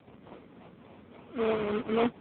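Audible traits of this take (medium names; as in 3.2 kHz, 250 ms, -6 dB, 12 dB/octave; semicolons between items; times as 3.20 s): a buzz of ramps at a fixed pitch in blocks of 8 samples; phasing stages 4, 3.6 Hz, lowest notch 800–2100 Hz; aliases and images of a low sample rate 1.7 kHz, jitter 20%; AMR-NB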